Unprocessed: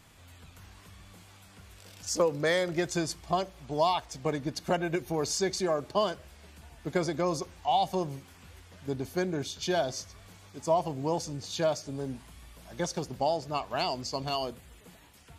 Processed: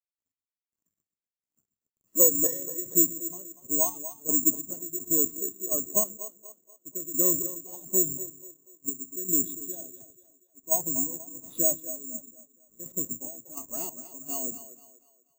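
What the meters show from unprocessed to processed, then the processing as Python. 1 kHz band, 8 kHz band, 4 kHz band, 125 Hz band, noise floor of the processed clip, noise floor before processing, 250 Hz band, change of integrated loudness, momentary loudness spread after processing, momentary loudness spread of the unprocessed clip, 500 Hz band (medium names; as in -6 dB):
-15.5 dB, +14.0 dB, under -20 dB, -10.0 dB, under -85 dBFS, -55 dBFS, -1.0 dB, +5.5 dB, 16 LU, 12 LU, -6.0 dB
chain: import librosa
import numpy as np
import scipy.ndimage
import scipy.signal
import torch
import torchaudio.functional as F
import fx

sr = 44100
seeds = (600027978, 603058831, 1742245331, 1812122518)

p1 = fx.octave_divider(x, sr, octaves=2, level_db=-4.0)
p2 = scipy.signal.sosfilt(scipy.signal.butter(2, 100.0, 'highpass', fs=sr, output='sos'), p1)
p3 = fx.peak_eq(p2, sr, hz=270.0, db=11.0, octaves=1.1)
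p4 = fx.schmitt(p3, sr, flips_db=-38.0)
p5 = p3 + (p4 * librosa.db_to_amplitude(-9.5))
p6 = fx.chopper(p5, sr, hz=1.4, depth_pct=65, duty_pct=45)
p7 = fx.notch_comb(p6, sr, f0_hz=770.0)
p8 = np.sign(p7) * np.maximum(np.abs(p7) - 10.0 ** (-50.0 / 20.0), 0.0)
p9 = p8 + fx.echo_split(p8, sr, split_hz=320.0, low_ms=131, high_ms=241, feedback_pct=52, wet_db=-8.5, dry=0)
p10 = (np.kron(scipy.signal.resample_poly(p9, 1, 6), np.eye(6)[0]) * 6)[:len(p9)]
p11 = fx.spectral_expand(p10, sr, expansion=1.5)
y = p11 * librosa.db_to_amplitude(-7.0)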